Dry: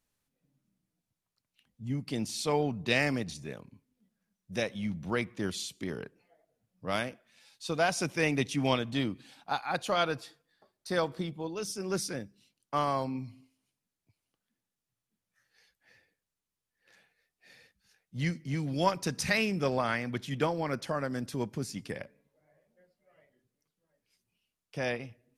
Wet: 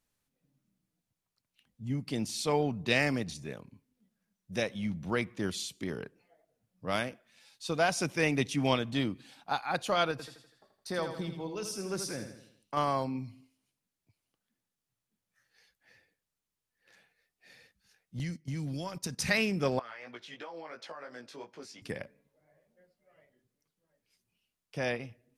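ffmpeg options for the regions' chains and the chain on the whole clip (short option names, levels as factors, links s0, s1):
-filter_complex "[0:a]asettb=1/sr,asplit=3[s0][s1][s2];[s0]atrim=end=10.114[s3];[s1]atrim=start=10.11:end=12.77,asetpts=PTS-STARTPTS,afade=t=in:d=0.004:c=qsin,afade=t=out:st=2.656:d=0.004:c=qsin,acompressor=threshold=0.0158:ratio=1.5:attack=3.2:release=140:knee=1:detection=peak,aecho=1:1:82|164|246|328|410:0.398|0.187|0.0879|0.0413|0.0194,atrim=end_sample=117306[s4];[s2]atrim=start=12.766[s5];[s3][s4]acrossfade=d=0.004:c1=hsin:c2=qsin[s6];[s6][s5]acrossfade=d=0.004:c1=qsin:c2=hsin,asettb=1/sr,asplit=3[s7][s8][s9];[s7]atrim=end=18.194[s10];[s8]atrim=start=18.19:end=19.19,asetpts=PTS-STARTPTS,afade=t=in:d=0.004:c=qsin,afade=t=out:st=0.996:d=0.004:c=qsin,agate=range=0.158:threshold=0.0112:ratio=16:release=100:detection=peak,acompressor=threshold=0.0158:ratio=5:attack=3.2:release=140:knee=1:detection=peak,bass=f=250:g=5,treble=f=4000:g=7[s11];[s9]atrim=start=19.186[s12];[s10][s11]acrossfade=d=0.004:c1=hsin:c2=qsin[s13];[s13][s12]acrossfade=d=0.004:c1=qsin:c2=hsin,asettb=1/sr,asplit=3[s14][s15][s16];[s14]atrim=end=19.794[s17];[s15]atrim=start=19.79:end=21.82,asetpts=PTS-STARTPTS,afade=t=in:d=0.004:c=qsin,afade=t=out:st=2.026:d=0.004:c=qsin,acrossover=split=380 6100:gain=0.0708 1 0.158[s18][s19][s20];[s18][s19][s20]amix=inputs=3:normalize=0,acompressor=threshold=0.0158:ratio=12:attack=3.2:release=140:knee=1:detection=peak,flanger=delay=16.5:depth=2.9:speed=2.9[s21];[s16]atrim=start=21.816[s22];[s17][s21]acrossfade=d=0.004:c1=hsin:c2=qsin[s23];[s23][s22]acrossfade=d=0.004:c1=qsin:c2=hsin"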